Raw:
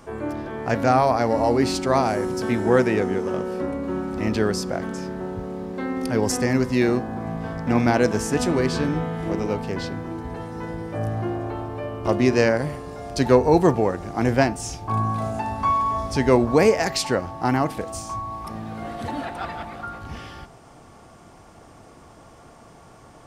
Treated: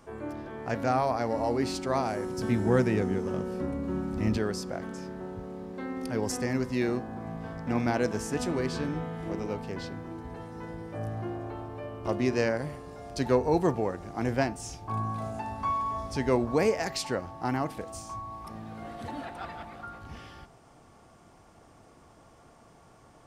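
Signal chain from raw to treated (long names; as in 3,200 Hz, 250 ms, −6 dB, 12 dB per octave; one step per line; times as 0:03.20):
0:02.38–0:04.38: bass and treble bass +9 dB, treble +3 dB
level −8.5 dB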